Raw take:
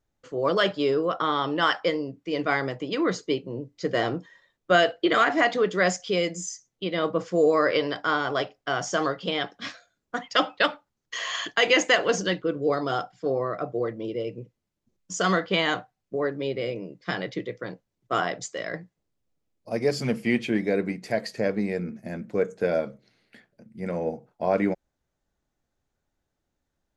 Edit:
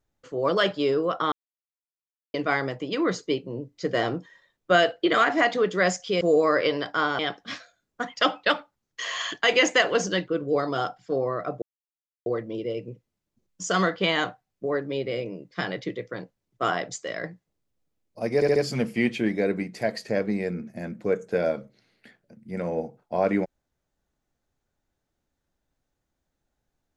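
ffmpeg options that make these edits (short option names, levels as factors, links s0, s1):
-filter_complex "[0:a]asplit=9[s0][s1][s2][s3][s4][s5][s6][s7][s8];[s0]atrim=end=1.32,asetpts=PTS-STARTPTS,afade=t=out:st=1.316:d=0.004:c=hsin[s9];[s1]atrim=start=1.32:end=2.34,asetpts=PTS-STARTPTS,volume=0[s10];[s2]atrim=start=2.34:end=6.212,asetpts=PTS-STARTPTS,afade=t=in:d=0.004:c=hsin[s11];[s3]atrim=start=7.308:end=8.292[s12];[s4]atrim=start=9.328:end=13.76,asetpts=PTS-STARTPTS,afade=t=out:st=4.428:d=0.004:c=hsin,apad=pad_dur=0.64[s13];[s5]atrim=start=13.76:end=19.922,asetpts=PTS-STARTPTS,afade=t=in:d=0.004:c=hsin[s14];[s6]atrim=start=19.848:end=19.922[s15];[s7]atrim=start=19.848:end=19.922[s16];[s8]atrim=start=19.848[s17];[s9][s10][s11]concat=n=3:v=0:a=1[s18];[s18][s12]acrossfade=d=0.004:c1=hsin:c2=hsin[s19];[s13][s14]concat=n=2:v=0:a=1[s20];[s19][s20]acrossfade=d=0.004:c1=hsin:c2=hsin[s21];[s21][s15]acrossfade=d=0.004:c1=hsin:c2=hsin[s22];[s22][s16]acrossfade=d=0.004:c1=hsin:c2=hsin[s23];[s23][s17]acrossfade=d=0.004:c1=hsin:c2=hsin"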